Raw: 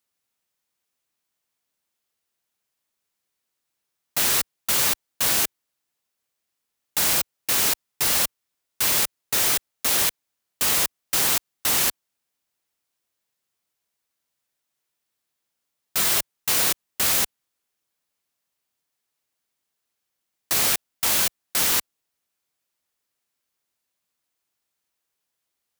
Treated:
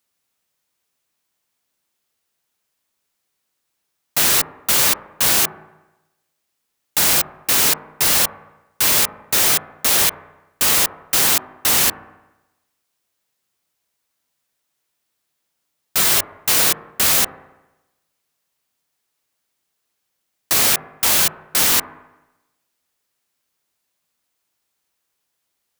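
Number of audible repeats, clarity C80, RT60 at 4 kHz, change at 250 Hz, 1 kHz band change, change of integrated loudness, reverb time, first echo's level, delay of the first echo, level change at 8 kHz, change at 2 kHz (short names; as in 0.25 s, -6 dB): none, 16.5 dB, 1.0 s, +6.0 dB, +6.0 dB, +5.5 dB, 1.0 s, none, none, +5.5 dB, +5.5 dB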